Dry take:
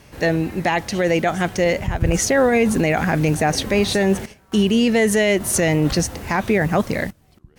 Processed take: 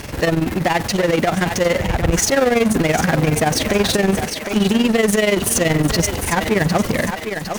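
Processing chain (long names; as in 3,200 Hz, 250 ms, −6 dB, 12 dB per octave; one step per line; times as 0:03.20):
amplitude modulation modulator 21 Hz, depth 85%
feedback echo with a high-pass in the loop 756 ms, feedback 28%, high-pass 480 Hz, level −12 dB
power curve on the samples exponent 0.5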